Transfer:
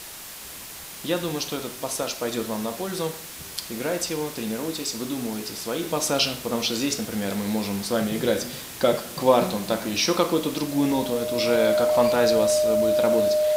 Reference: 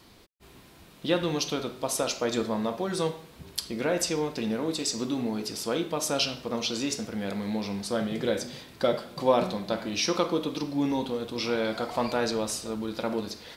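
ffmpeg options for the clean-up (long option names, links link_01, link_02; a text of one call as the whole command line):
ffmpeg -i in.wav -af "bandreject=frequency=610:width=30,afwtdn=0.013,asetnsamples=nb_out_samples=441:pad=0,asendcmd='5.83 volume volume -4.5dB',volume=0dB" out.wav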